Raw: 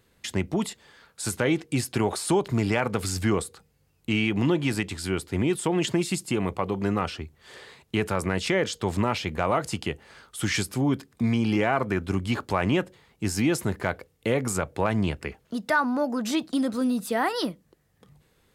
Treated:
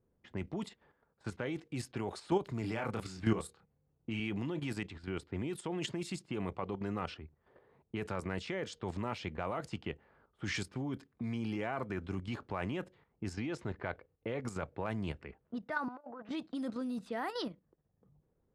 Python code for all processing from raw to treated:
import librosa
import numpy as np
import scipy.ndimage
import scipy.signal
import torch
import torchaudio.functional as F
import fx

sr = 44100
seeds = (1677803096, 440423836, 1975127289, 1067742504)

y = fx.chain(x, sr, fx.highpass(hz=43.0, slope=12),
    fx.doubler(ms=27.0, db=-4.0), at=(2.61, 4.2))
y = fx.chain(y, sr, fx.lowpass(hz=5000.0, slope=12),
    fx.peak_eq(hz=190.0, db=-4.0, octaves=0.72), at=(13.33, 14.43))
y = fx.chain(y, sr, fx.bandpass_edges(low_hz=570.0, high_hz=2400.0),
    fx.over_compress(threshold_db=-36.0, ratio=-0.5), at=(15.88, 16.29))
y = fx.env_lowpass(y, sr, base_hz=690.0, full_db=-20.0)
y = fx.high_shelf(y, sr, hz=4100.0, db=-3.5)
y = fx.level_steps(y, sr, step_db=10)
y = y * 10.0 ** (-6.5 / 20.0)